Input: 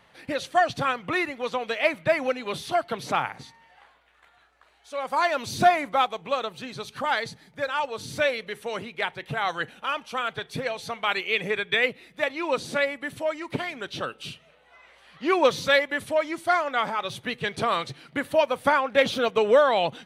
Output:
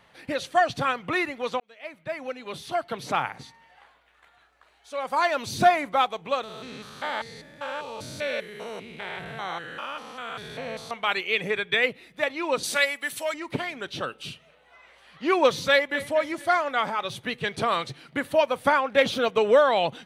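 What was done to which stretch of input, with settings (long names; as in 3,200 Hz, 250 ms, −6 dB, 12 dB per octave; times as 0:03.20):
0:01.60–0:03.27: fade in
0:06.43–0:10.91: spectrum averaged block by block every 200 ms
0:12.63–0:13.34: spectral tilt +4 dB per octave
0:15.71–0:16.13: delay throw 230 ms, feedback 45%, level −14.5 dB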